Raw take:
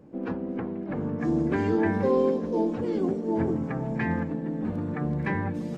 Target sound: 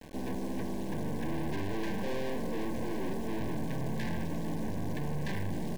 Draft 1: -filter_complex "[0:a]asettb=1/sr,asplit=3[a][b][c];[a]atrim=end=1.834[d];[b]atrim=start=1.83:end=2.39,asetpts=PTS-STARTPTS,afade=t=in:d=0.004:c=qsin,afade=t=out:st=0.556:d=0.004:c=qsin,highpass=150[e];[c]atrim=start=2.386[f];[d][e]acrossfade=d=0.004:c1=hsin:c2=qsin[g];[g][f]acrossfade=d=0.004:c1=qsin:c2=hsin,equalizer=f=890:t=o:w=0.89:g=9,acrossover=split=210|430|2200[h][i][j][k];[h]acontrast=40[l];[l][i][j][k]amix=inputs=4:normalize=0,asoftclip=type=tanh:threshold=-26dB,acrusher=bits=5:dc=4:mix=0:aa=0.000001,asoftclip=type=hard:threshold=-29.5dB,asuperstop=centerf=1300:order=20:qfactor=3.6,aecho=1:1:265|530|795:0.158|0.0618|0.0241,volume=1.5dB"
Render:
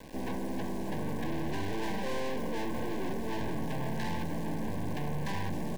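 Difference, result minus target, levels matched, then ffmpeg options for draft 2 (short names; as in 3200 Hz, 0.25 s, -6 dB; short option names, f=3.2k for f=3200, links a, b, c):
1000 Hz band +3.5 dB
-filter_complex "[0:a]asettb=1/sr,asplit=3[a][b][c];[a]atrim=end=1.834[d];[b]atrim=start=1.83:end=2.39,asetpts=PTS-STARTPTS,afade=t=in:d=0.004:c=qsin,afade=t=out:st=0.556:d=0.004:c=qsin,highpass=150[e];[c]atrim=start=2.386[f];[d][e]acrossfade=d=0.004:c1=hsin:c2=qsin[g];[g][f]acrossfade=d=0.004:c1=qsin:c2=hsin,equalizer=f=890:t=o:w=0.89:g=-3,acrossover=split=210|430|2200[h][i][j][k];[h]acontrast=40[l];[l][i][j][k]amix=inputs=4:normalize=0,asoftclip=type=tanh:threshold=-26dB,acrusher=bits=5:dc=4:mix=0:aa=0.000001,asoftclip=type=hard:threshold=-29.5dB,asuperstop=centerf=1300:order=20:qfactor=3.6,aecho=1:1:265|530|795:0.158|0.0618|0.0241,volume=1.5dB"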